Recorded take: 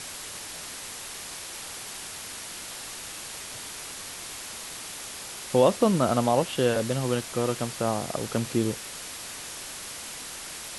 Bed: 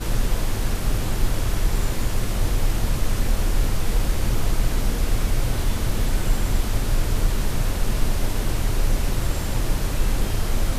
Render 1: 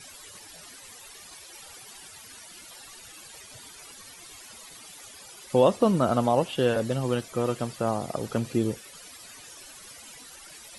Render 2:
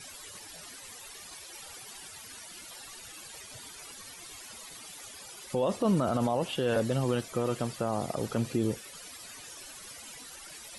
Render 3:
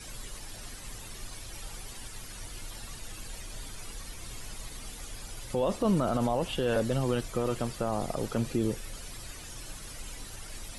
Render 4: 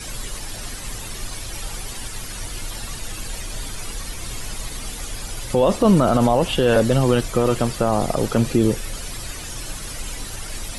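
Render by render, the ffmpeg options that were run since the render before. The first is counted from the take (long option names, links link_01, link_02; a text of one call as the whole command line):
ffmpeg -i in.wav -af "afftdn=noise_reduction=15:noise_floor=-39" out.wav
ffmpeg -i in.wav -af "alimiter=limit=-18.5dB:level=0:latency=1:release=28" out.wav
ffmpeg -i in.wav -i bed.wav -filter_complex "[1:a]volume=-23dB[link_01];[0:a][link_01]amix=inputs=2:normalize=0" out.wav
ffmpeg -i in.wav -af "volume=11.5dB" out.wav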